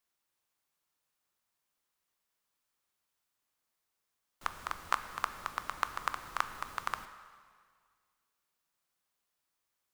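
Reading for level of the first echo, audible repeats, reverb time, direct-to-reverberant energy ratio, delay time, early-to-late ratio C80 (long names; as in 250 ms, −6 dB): no echo audible, no echo audible, 1.9 s, 10.0 dB, no echo audible, 12.5 dB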